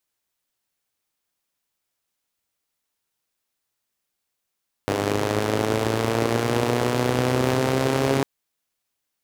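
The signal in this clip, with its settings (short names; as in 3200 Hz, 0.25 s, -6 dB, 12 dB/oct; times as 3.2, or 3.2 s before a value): four-cylinder engine model, changing speed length 3.35 s, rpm 3000, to 4100, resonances 130/270/410 Hz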